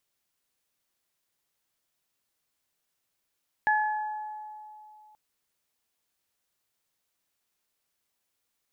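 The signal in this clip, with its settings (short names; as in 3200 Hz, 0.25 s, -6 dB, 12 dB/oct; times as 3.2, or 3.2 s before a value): additive tone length 1.48 s, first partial 853 Hz, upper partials 0 dB, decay 2.79 s, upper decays 1.10 s, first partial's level -22 dB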